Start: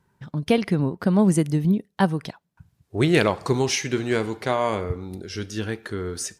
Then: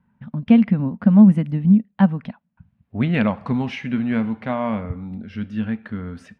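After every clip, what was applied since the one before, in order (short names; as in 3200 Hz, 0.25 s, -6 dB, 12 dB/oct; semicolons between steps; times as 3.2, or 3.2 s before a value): EQ curve 150 Hz 0 dB, 230 Hz +12 dB, 360 Hz -15 dB, 550 Hz -2 dB, 2700 Hz -3 dB, 6600 Hz -29 dB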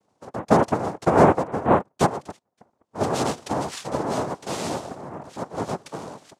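noise vocoder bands 2; gain -5 dB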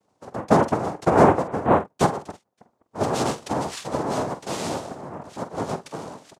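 doubler 47 ms -11.5 dB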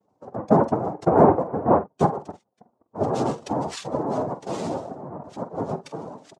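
spectral contrast raised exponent 1.6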